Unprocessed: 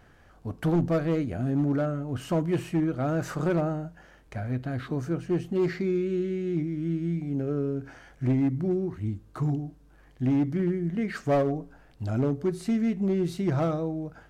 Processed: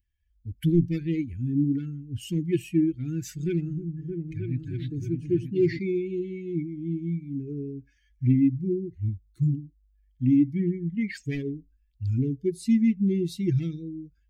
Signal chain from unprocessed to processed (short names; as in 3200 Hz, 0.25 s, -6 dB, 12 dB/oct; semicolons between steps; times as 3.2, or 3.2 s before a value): per-bin expansion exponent 2; elliptic band-stop 350–2000 Hz, stop band 40 dB; 3.35–5.79 repeats that get brighter 0.311 s, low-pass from 200 Hz, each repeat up 2 oct, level -3 dB; gain +7 dB